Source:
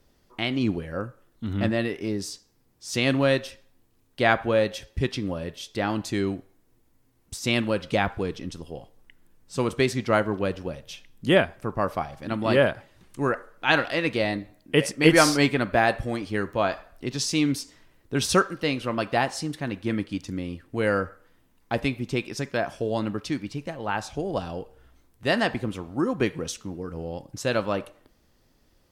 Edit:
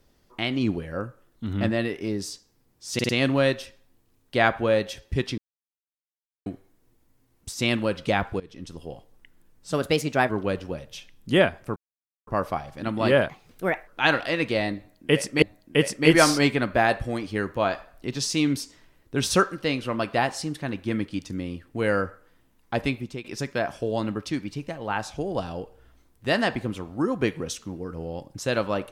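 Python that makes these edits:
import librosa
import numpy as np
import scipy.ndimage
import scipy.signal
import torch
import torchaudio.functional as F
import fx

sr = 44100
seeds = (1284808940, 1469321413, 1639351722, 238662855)

y = fx.edit(x, sr, fx.stutter(start_s=2.94, slice_s=0.05, count=4),
    fx.silence(start_s=5.23, length_s=1.08),
    fx.fade_in_from(start_s=8.25, length_s=0.41, floor_db=-21.5),
    fx.speed_span(start_s=9.57, length_s=0.68, speed=1.19),
    fx.insert_silence(at_s=11.72, length_s=0.51),
    fx.speed_span(start_s=12.74, length_s=0.78, speed=1.34),
    fx.repeat(start_s=14.41, length_s=0.66, count=2),
    fx.fade_out_to(start_s=21.93, length_s=0.3, floor_db=-15.0), tone=tone)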